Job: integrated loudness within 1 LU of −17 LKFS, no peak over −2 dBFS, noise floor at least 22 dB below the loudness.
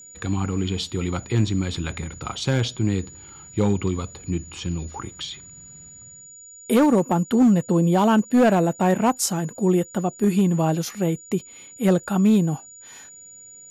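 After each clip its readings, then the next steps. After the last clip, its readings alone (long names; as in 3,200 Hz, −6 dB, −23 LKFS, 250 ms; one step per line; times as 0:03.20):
share of clipped samples 0.7%; peaks flattened at −11.5 dBFS; interfering tone 6,900 Hz; level of the tone −42 dBFS; integrated loudness −22.0 LKFS; sample peak −11.5 dBFS; target loudness −17.0 LKFS
→ clipped peaks rebuilt −11.5 dBFS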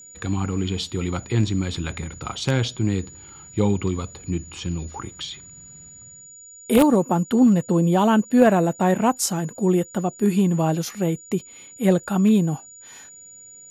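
share of clipped samples 0.0%; interfering tone 6,900 Hz; level of the tone −42 dBFS
→ notch filter 6,900 Hz, Q 30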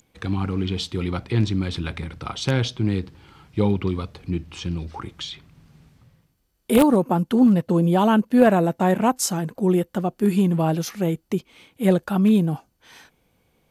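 interfering tone none found; integrated loudness −21.5 LKFS; sample peak −2.5 dBFS; target loudness −17.0 LKFS
→ level +4.5 dB
brickwall limiter −2 dBFS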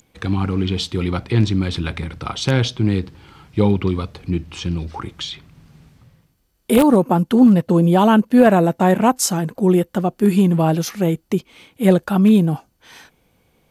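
integrated loudness −17.5 LKFS; sample peak −2.0 dBFS; background noise floor −63 dBFS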